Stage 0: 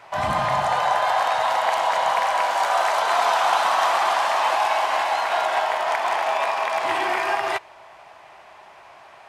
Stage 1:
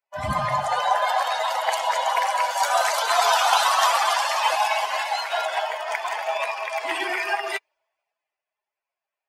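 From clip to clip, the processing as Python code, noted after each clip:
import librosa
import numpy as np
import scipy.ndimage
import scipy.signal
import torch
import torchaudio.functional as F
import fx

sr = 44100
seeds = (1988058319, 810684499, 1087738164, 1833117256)

y = fx.bin_expand(x, sr, power=2.0)
y = fx.high_shelf(y, sr, hz=2800.0, db=10.0)
y = fx.band_widen(y, sr, depth_pct=40)
y = y * 10.0 ** (3.0 / 20.0)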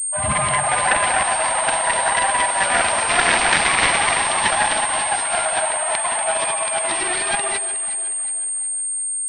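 y = fx.self_delay(x, sr, depth_ms=0.66)
y = fx.echo_alternate(y, sr, ms=182, hz=990.0, feedback_pct=66, wet_db=-9.5)
y = fx.pwm(y, sr, carrier_hz=8600.0)
y = y * 10.0 ** (4.5 / 20.0)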